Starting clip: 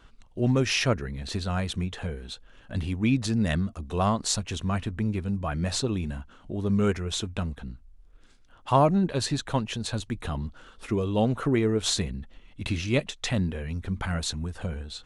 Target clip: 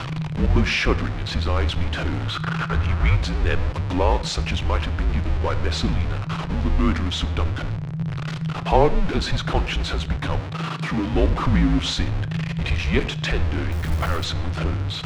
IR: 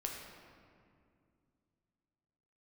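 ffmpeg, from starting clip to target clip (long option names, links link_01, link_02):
-filter_complex "[0:a]aeval=exprs='val(0)+0.5*0.0562*sgn(val(0))':channel_layout=same,lowpass=3700,asplit=2[link_01][link_02];[1:a]atrim=start_sample=2205,afade=type=out:start_time=0.2:duration=0.01,atrim=end_sample=9261[link_03];[link_02][link_03]afir=irnorm=-1:irlink=0,volume=-5.5dB[link_04];[link_01][link_04]amix=inputs=2:normalize=0,afreqshift=-170,asettb=1/sr,asplit=3[link_05][link_06][link_07];[link_05]atrim=end=2.274[link_08];[link_06]atrim=start=2.27:end=3.15,asetpts=PTS-STARTPTS,afade=type=in:duration=0.004:curve=qsin,afade=type=out:start_time=0.876:duration=0.004:curve=qsin,equalizer=frequency=1300:width=1.8:gain=9.5[link_09];[link_07]atrim=start=3.146[link_10];[link_08][link_09]acrossfade=duration=0.004:curve1=hsin:curve2=qsin[link_11];[link_11][link_10]acrossfade=duration=0.004:curve1=qsin:curve2=hsin,asettb=1/sr,asplit=3[link_12][link_13][link_14];[link_12]atrim=end=10.404[link_15];[link_13]atrim=start=10.4:end=11.13,asetpts=PTS-STARTPTS,afade=type=in:duration=0.004:curve=qsin,afade=type=out:start_time=0.726:duration=0.004:curve=qsin,highpass=130[link_16];[link_14]atrim=start=11.126[link_17];[link_15][link_16]acrossfade=duration=0.004:curve1=hsin:curve2=qsin[link_18];[link_18][link_17]acrossfade=duration=0.004:curve1=qsin:curve2=hsin,asplit=3[link_19][link_20][link_21];[link_19]afade=type=out:start_time=13.71:duration=0.02[link_22];[link_20]acrusher=bits=7:dc=4:mix=0:aa=0.000001,afade=type=in:start_time=13.71:duration=0.02,afade=type=out:start_time=14.23:duration=0.02[link_23];[link_21]afade=type=in:start_time=14.23:duration=0.02[link_24];[link_22][link_23][link_24]amix=inputs=3:normalize=0"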